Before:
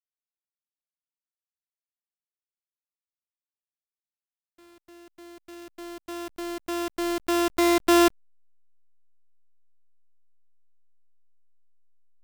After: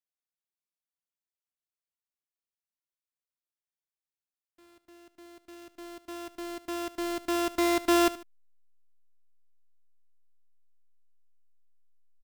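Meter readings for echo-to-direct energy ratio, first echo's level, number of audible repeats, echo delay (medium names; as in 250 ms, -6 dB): -15.5 dB, -16.0 dB, 2, 74 ms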